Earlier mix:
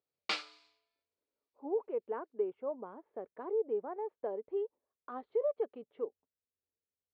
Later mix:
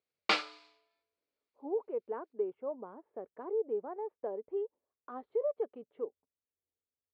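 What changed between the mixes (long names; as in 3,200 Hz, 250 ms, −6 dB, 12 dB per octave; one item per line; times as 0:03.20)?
background +10.0 dB
master: add high-shelf EQ 2,500 Hz −8.5 dB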